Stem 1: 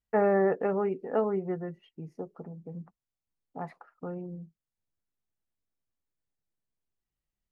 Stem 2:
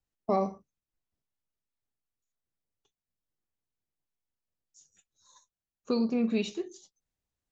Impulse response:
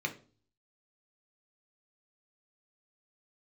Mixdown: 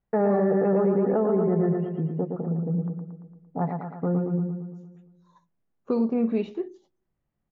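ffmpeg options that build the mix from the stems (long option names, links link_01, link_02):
-filter_complex "[0:a]equalizer=frequency=160:width_type=o:width=1.3:gain=10,volume=3dB,asplit=2[link_01][link_02];[link_02]volume=-5dB[link_03];[1:a]volume=0.5dB,asplit=2[link_04][link_05];[link_05]volume=-20.5dB[link_06];[2:a]atrim=start_sample=2205[link_07];[link_06][link_07]afir=irnorm=-1:irlink=0[link_08];[link_03]aecho=0:1:114|228|342|456|570|684|798|912|1026:1|0.57|0.325|0.185|0.106|0.0602|0.0343|0.0195|0.0111[link_09];[link_01][link_04][link_08][link_09]amix=inputs=4:normalize=0,lowpass=1900,equalizer=frequency=540:width=0.44:gain=5,alimiter=limit=-15dB:level=0:latency=1:release=70"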